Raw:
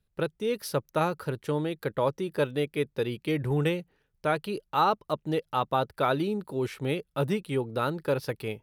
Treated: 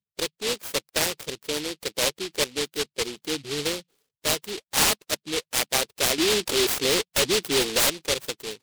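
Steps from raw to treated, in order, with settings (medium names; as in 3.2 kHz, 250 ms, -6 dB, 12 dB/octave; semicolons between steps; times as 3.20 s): spectral gate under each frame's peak -15 dB strong; high-pass 370 Hz 12 dB/octave; 6.18–7.90 s: overdrive pedal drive 27 dB, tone 3.4 kHz, clips at -17 dBFS; delay time shaken by noise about 3.4 kHz, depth 0.31 ms; trim +3 dB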